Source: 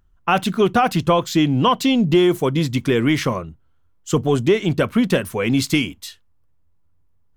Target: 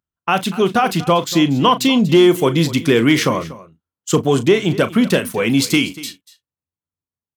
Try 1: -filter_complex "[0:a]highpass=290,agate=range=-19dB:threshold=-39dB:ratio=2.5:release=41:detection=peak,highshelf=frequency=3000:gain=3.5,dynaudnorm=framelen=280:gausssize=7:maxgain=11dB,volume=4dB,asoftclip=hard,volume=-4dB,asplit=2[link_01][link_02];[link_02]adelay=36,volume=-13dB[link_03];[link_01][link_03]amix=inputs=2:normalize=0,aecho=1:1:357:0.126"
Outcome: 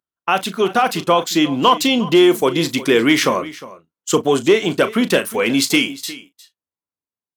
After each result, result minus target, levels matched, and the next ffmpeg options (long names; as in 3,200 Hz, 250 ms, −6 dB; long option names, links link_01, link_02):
echo 118 ms late; 125 Hz band −8.0 dB
-filter_complex "[0:a]highpass=290,agate=range=-19dB:threshold=-39dB:ratio=2.5:release=41:detection=peak,highshelf=frequency=3000:gain=3.5,dynaudnorm=framelen=280:gausssize=7:maxgain=11dB,volume=4dB,asoftclip=hard,volume=-4dB,asplit=2[link_01][link_02];[link_02]adelay=36,volume=-13dB[link_03];[link_01][link_03]amix=inputs=2:normalize=0,aecho=1:1:239:0.126"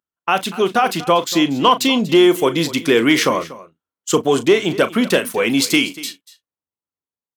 125 Hz band −8.0 dB
-filter_complex "[0:a]highpass=130,agate=range=-19dB:threshold=-39dB:ratio=2.5:release=41:detection=peak,highshelf=frequency=3000:gain=3.5,dynaudnorm=framelen=280:gausssize=7:maxgain=11dB,volume=4dB,asoftclip=hard,volume=-4dB,asplit=2[link_01][link_02];[link_02]adelay=36,volume=-13dB[link_03];[link_01][link_03]amix=inputs=2:normalize=0,aecho=1:1:239:0.126"